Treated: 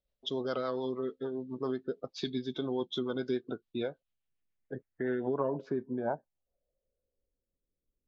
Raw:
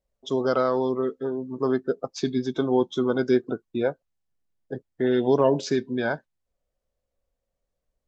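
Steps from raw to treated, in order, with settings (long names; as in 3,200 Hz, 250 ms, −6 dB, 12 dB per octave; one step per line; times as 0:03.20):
rotating-speaker cabinet horn 7 Hz
downward compressor 2 to 1, threshold −28 dBFS, peak gain reduction 7 dB
low-pass filter sweep 3,700 Hz → 340 Hz, 0:03.88–0:07.49
high-shelf EQ 5,900 Hz +6.5 dB
level −5 dB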